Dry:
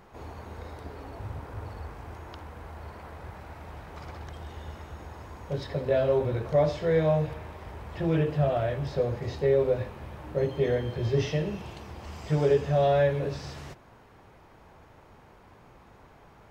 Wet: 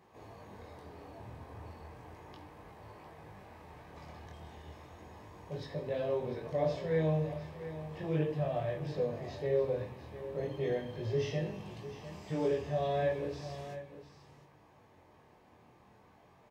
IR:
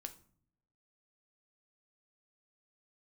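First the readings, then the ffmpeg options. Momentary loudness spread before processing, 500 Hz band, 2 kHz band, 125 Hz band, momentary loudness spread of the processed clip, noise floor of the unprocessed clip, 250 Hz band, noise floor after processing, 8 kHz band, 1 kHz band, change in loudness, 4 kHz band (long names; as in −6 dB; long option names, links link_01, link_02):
19 LU, −8.0 dB, −8.0 dB, −8.5 dB, 20 LU, −55 dBFS, −6.5 dB, −62 dBFS, can't be measured, −7.5 dB, −8.0 dB, −7.5 dB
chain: -filter_complex "[0:a]highpass=100,bandreject=frequency=1400:width=5.8,flanger=delay=18.5:depth=7:speed=0.35,aecho=1:1:702:0.224[link_01];[1:a]atrim=start_sample=2205[link_02];[link_01][link_02]afir=irnorm=-1:irlink=0"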